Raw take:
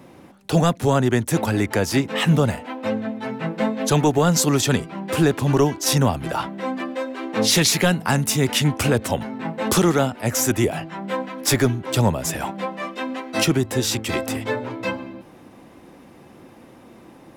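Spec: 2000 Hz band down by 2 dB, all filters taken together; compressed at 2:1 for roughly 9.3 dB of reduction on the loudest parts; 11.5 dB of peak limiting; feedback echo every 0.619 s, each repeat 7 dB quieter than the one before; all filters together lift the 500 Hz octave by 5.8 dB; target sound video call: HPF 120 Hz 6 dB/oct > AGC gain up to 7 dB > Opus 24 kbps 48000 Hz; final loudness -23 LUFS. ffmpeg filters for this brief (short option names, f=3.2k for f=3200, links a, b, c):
-af "equalizer=f=500:t=o:g=7.5,equalizer=f=2k:t=o:g=-3,acompressor=threshold=-27dB:ratio=2,alimiter=limit=-23.5dB:level=0:latency=1,highpass=f=120:p=1,aecho=1:1:619|1238|1857|2476|3095:0.447|0.201|0.0905|0.0407|0.0183,dynaudnorm=m=7dB,volume=5.5dB" -ar 48000 -c:a libopus -b:a 24k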